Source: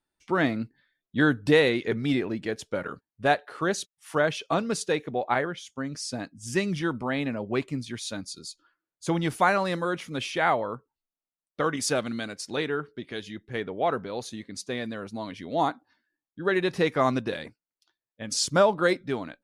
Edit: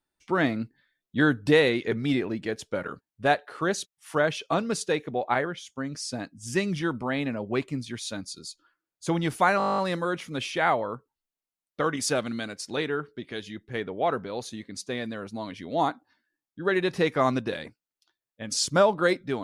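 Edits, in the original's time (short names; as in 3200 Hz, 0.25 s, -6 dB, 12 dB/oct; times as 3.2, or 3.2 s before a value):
9.58 stutter 0.02 s, 11 plays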